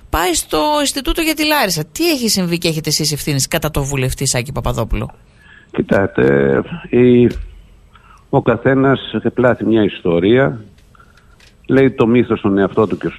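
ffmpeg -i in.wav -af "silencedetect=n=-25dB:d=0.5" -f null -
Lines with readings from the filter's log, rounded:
silence_start: 5.10
silence_end: 5.74 | silence_duration: 0.64
silence_start: 7.44
silence_end: 8.33 | silence_duration: 0.89
silence_start: 10.61
silence_end: 11.69 | silence_duration: 1.08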